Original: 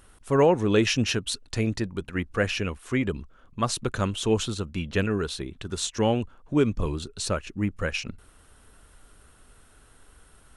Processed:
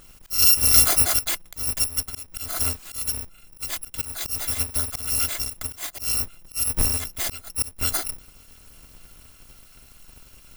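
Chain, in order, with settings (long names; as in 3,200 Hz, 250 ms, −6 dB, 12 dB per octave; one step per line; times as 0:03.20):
samples in bit-reversed order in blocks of 256 samples
volume swells 276 ms
level +5.5 dB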